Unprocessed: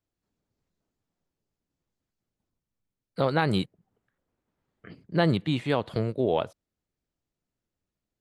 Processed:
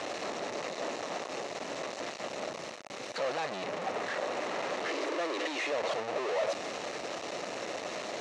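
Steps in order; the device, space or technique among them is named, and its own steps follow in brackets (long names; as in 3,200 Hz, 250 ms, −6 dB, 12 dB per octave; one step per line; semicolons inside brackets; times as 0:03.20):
0:04.88–0:05.72: Butterworth high-pass 290 Hz 72 dB per octave
home computer beeper (sign of each sample alone; loudspeaker in its box 560–5,200 Hz, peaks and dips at 590 Hz +5 dB, 950 Hz −4 dB, 1,500 Hz −8 dB, 2,300 Hz −3 dB, 3,300 Hz −9 dB, 4,800 Hz −9 dB)
level +5.5 dB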